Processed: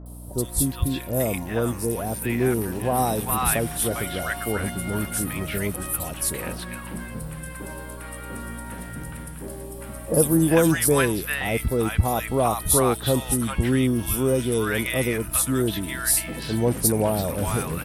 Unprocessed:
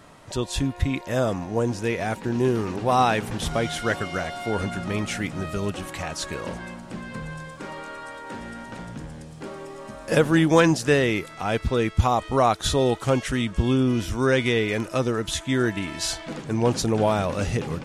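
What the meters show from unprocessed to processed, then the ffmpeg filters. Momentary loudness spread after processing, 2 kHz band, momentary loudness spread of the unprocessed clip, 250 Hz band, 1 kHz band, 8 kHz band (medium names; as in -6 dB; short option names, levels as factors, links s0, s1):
16 LU, -1.0 dB, 16 LU, 0.0 dB, -2.5 dB, +10.0 dB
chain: -filter_complex "[0:a]acrossover=split=920|4000[s0][s1][s2];[s2]adelay=60[s3];[s1]adelay=400[s4];[s0][s4][s3]amix=inputs=3:normalize=0,aexciter=amount=14:drive=6.5:freq=9500,aeval=exprs='val(0)+0.0126*(sin(2*PI*60*n/s)+sin(2*PI*2*60*n/s)/2+sin(2*PI*3*60*n/s)/3+sin(2*PI*4*60*n/s)/4+sin(2*PI*5*60*n/s)/5)':c=same"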